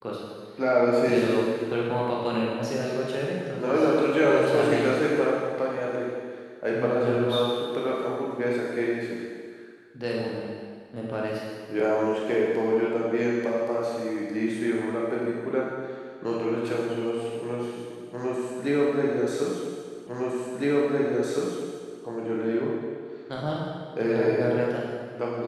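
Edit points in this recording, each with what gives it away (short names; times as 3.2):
20.07 repeat of the last 1.96 s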